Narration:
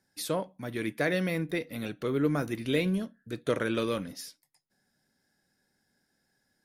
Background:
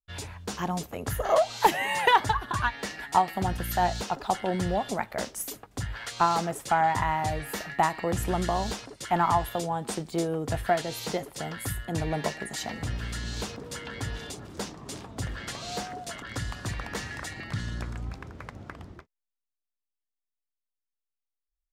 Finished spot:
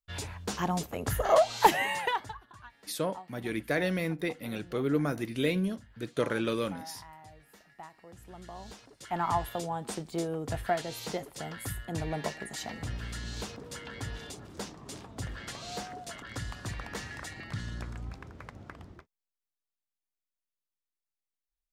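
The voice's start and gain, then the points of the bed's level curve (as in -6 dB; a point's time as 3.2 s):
2.70 s, -1.0 dB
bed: 1.81 s 0 dB
2.53 s -23.5 dB
8.16 s -23.5 dB
9.36 s -4.5 dB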